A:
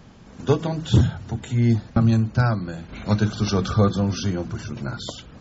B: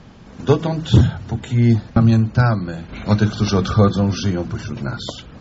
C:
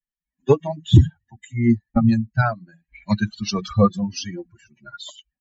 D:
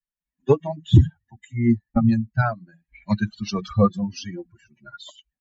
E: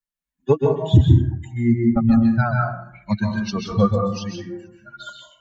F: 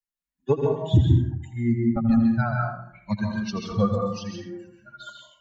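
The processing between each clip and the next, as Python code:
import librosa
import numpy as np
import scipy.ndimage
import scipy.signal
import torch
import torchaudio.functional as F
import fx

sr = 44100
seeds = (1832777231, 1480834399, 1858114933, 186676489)

y1 = scipy.signal.sosfilt(scipy.signal.butter(2, 6200.0, 'lowpass', fs=sr, output='sos'), x)
y1 = y1 * 10.0 ** (4.5 / 20.0)
y2 = fx.bin_expand(y1, sr, power=3.0)
y2 = y2 * 10.0 ** (3.5 / 20.0)
y3 = fx.high_shelf(y2, sr, hz=3600.0, db=-7.0)
y3 = y3 * 10.0 ** (-1.5 / 20.0)
y4 = fx.rev_plate(y3, sr, seeds[0], rt60_s=0.66, hf_ratio=0.45, predelay_ms=120, drr_db=0.5)
y5 = y4 + 10.0 ** (-11.5 / 20.0) * np.pad(y4, (int(83 * sr / 1000.0), 0))[:len(y4)]
y5 = y5 * 10.0 ** (-5.0 / 20.0)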